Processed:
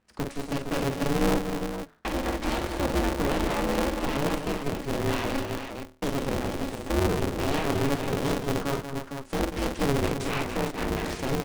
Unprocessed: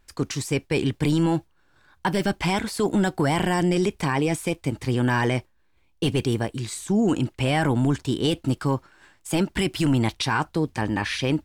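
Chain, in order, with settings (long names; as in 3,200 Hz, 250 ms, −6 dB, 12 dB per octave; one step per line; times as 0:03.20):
phase distortion by the signal itself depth 0.24 ms
high-pass filter 75 Hz 12 dB per octave
high-shelf EQ 2,100 Hz −12 dB
mains-hum notches 60/120/180/240/300/360/420/480 Hz
in parallel at −0.5 dB: brickwall limiter −19 dBFS, peak gain reduction 6.5 dB
on the sum: elliptic low-pass filter 9,700 Hz
on a send: multi-tap delay 48/189/285/460 ms −6/−9/−9/−7 dB
on the sum: ring modulator with a square carrier 140 Hz
level −7.5 dB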